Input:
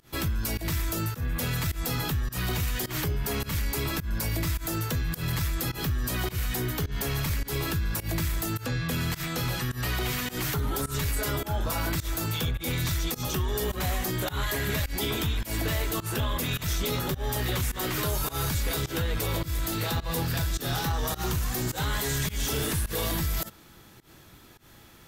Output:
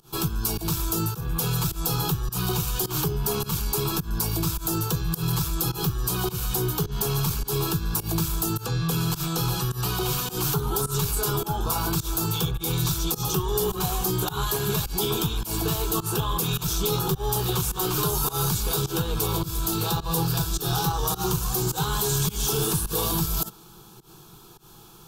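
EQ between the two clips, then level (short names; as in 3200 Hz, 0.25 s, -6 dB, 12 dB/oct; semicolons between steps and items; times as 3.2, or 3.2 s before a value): fixed phaser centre 390 Hz, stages 8; +6.5 dB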